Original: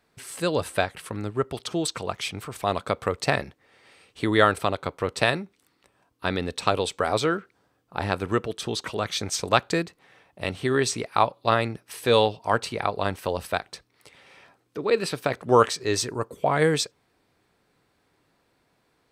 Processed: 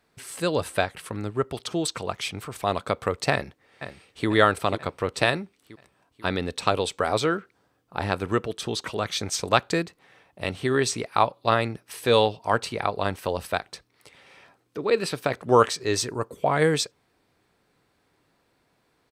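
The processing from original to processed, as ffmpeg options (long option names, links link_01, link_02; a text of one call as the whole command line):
ffmpeg -i in.wav -filter_complex "[0:a]asplit=2[link_01][link_02];[link_02]afade=type=in:start_time=3.32:duration=0.01,afade=type=out:start_time=4.28:duration=0.01,aecho=0:1:490|980|1470|1960|2450|2940:0.316228|0.173925|0.0956589|0.0526124|0.0289368|0.0159152[link_03];[link_01][link_03]amix=inputs=2:normalize=0" out.wav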